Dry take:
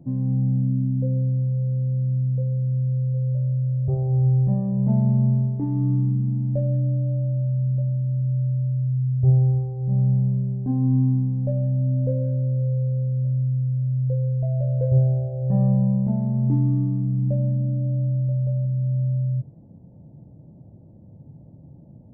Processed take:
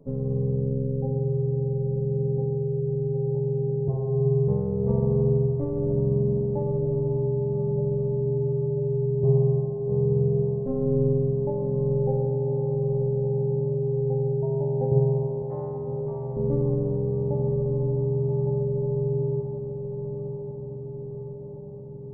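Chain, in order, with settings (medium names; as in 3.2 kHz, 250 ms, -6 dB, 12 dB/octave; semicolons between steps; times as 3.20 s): 15.42–16.37 s: high-pass 360 Hz 24 dB/octave; AM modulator 280 Hz, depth 100%; echo that smears into a reverb 1090 ms, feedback 64%, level -8.5 dB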